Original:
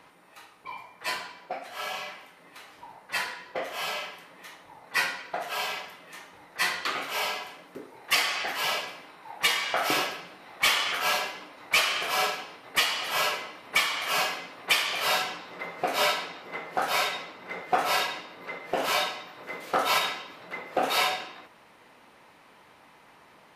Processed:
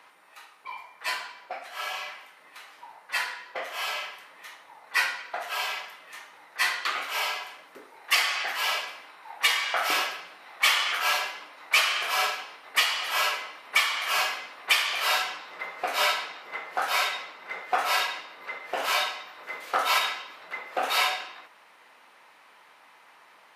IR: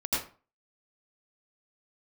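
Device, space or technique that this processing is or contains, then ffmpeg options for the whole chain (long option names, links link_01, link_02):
filter by subtraction: -filter_complex "[0:a]asplit=2[link_01][link_02];[link_02]lowpass=1300,volume=-1[link_03];[link_01][link_03]amix=inputs=2:normalize=0"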